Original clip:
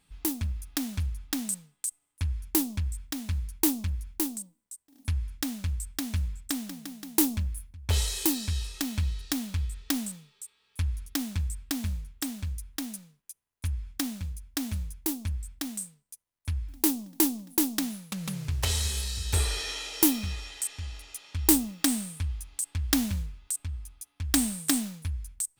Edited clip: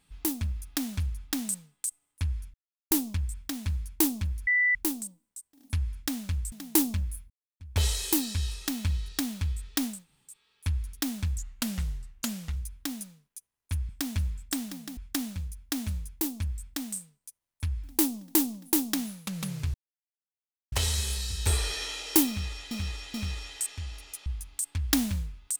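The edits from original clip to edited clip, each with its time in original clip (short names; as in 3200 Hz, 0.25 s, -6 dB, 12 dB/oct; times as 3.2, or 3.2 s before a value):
2.54 insert silence 0.37 s
4.1 add tone 1980 Hz -20.5 dBFS 0.28 s
5.87–6.95 move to 13.82
7.73 insert silence 0.30 s
10.09–10.44 room tone, crossfade 0.24 s
11.51–12.49 speed 83%
18.59 insert silence 0.98 s
20.15–20.58 loop, 3 plays
21.27–22.26 cut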